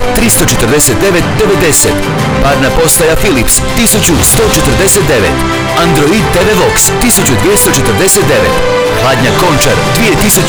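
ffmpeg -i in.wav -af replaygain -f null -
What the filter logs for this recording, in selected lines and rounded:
track_gain = -9.2 dB
track_peak = 0.443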